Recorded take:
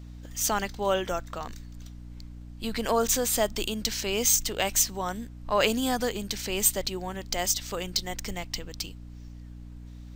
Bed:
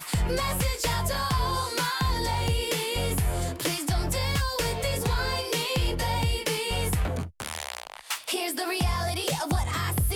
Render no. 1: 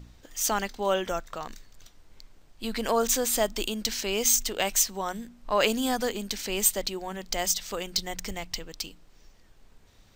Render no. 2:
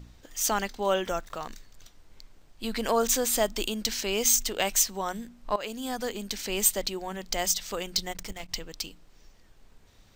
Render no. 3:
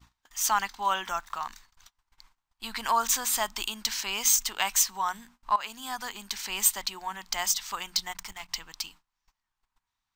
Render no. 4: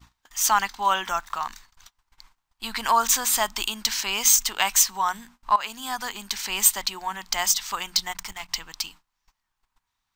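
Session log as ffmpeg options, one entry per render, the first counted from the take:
-af "bandreject=f=60:t=h:w=4,bandreject=f=120:t=h:w=4,bandreject=f=180:t=h:w=4,bandreject=f=240:t=h:w=4,bandreject=f=300:t=h:w=4"
-filter_complex "[0:a]asettb=1/sr,asplit=3[s0][s1][s2];[s0]atrim=end=1.054[s3];[s1]atrim=start=1.05:end=1.48,asetpts=PTS-STARTPTS,afade=t=in:d=0.004:c=qsin,afade=t=out:st=0.426:d=0.004:c=qsin,aeval=exprs='val(0)*gte(abs(val(0)),0.00282)':c=same[s4];[s2]atrim=start=1.476[s5];[s3][s4]acrossfade=d=0.004:c1=hsin:c2=qsin[s6];[s6][s5]acrossfade=d=0.004:c1=qsin:c2=hsin,asettb=1/sr,asplit=3[s7][s8][s9];[s7]atrim=end=8.124[s10];[s8]atrim=start=8.12:end=8.52,asetpts=PTS-STARTPTS,afade=t=in:d=0.004:c=qsin,afade=t=out:st=0.396:d=0.004:c=qsin,aeval=exprs='if(lt(val(0),0),0.251*val(0),val(0))':c=same[s11];[s9]atrim=start=8.516[s12];[s10][s11]acrossfade=d=0.004:c1=hsin:c2=qsin[s13];[s13][s12]acrossfade=d=0.004:c1=qsin:c2=hsin,asplit=2[s14][s15];[s14]atrim=end=5.56,asetpts=PTS-STARTPTS,afade=t=out:st=5.556:d=0.004:c=hsin:silence=0.133352[s16];[s15]atrim=start=5.56,asetpts=PTS-STARTPTS,afade=t=in:d=1.2:c=qsin:silence=0.133352[s17];[s16][s17]concat=n=2:v=0:a=1"
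-af "agate=range=0.0708:threshold=0.00447:ratio=16:detection=peak,lowshelf=f=700:t=q:w=3:g=-10.5"
-af "volume=1.78"

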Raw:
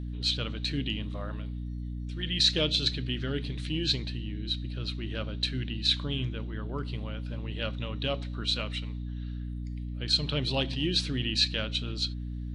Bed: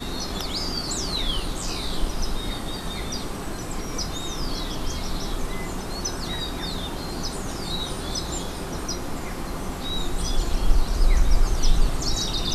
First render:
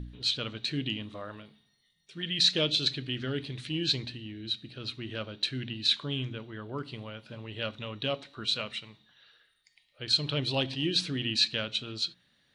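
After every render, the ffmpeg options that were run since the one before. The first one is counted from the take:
-af "bandreject=f=60:t=h:w=4,bandreject=f=120:t=h:w=4,bandreject=f=180:t=h:w=4,bandreject=f=240:t=h:w=4,bandreject=f=300:t=h:w=4"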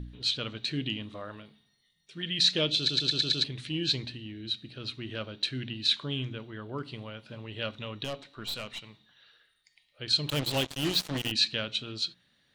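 -filter_complex "[0:a]asettb=1/sr,asplit=3[s0][s1][s2];[s0]atrim=end=8.044[s3];[s1]atrim=start=8.04:end=8.84,asetpts=PTS-STARTPTS,afade=t=in:d=0.004:c=qsin,afade=t=out:st=0.796:d=0.004:c=qsin,aeval=exprs='(tanh(35.5*val(0)+0.5)-tanh(0.5))/35.5':c=same[s4];[s2]atrim=start=8.836[s5];[s3][s4]acrossfade=d=0.004:c1=hsin:c2=qsin[s6];[s6][s5]acrossfade=d=0.004:c1=qsin:c2=hsin,asettb=1/sr,asplit=3[s7][s8][s9];[s7]atrim=end=10.294[s10];[s8]atrim=start=10.29:end=11.32,asetpts=PTS-STARTPTS,afade=t=in:d=0.004:c=qsin,afade=t=out:st=1.026:d=0.004:c=qsin,acrusher=bits=4:mix=0:aa=0.5[s11];[s9]atrim=start=11.316[s12];[s10][s11]acrossfade=d=0.004:c1=hsin:c2=qsin[s13];[s13][s12]acrossfade=d=0.004:c1=qsin:c2=hsin,asplit=7[s14][s15][s16][s17][s18][s19][s20];[s14]atrim=end=2.892[s21];[s15]atrim=start=2.778:end=2.892[s22];[s16]atrim=start=2.778:end=2.892[s23];[s17]atrim=start=2.778:end=2.892[s24];[s18]atrim=start=2.778:end=2.892[s25];[s19]atrim=start=2.778:end=2.892[s26];[s20]atrim=start=3.438[s27];[s21][s22]acrossfade=d=0.004:c1=hsin:c2=hsin[s28];[s28][s23]acrossfade=d=0.004:c1=hsin:c2=hsin[s29];[s29][s24]acrossfade=d=0.004:c1=hsin:c2=hsin[s30];[s30][s25]acrossfade=d=0.004:c1=hsin:c2=hsin[s31];[s31][s26]acrossfade=d=0.004:c1=hsin:c2=hsin[s32];[s32][s27]acrossfade=d=0.004:c1=hsin:c2=hsin"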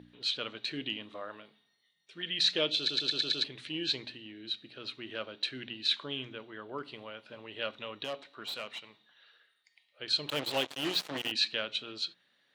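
-af "highpass=120,bass=f=250:g=-14,treble=f=4000:g=-7"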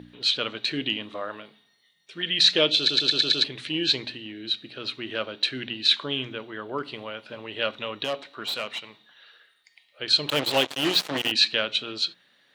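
-af "volume=2.82"

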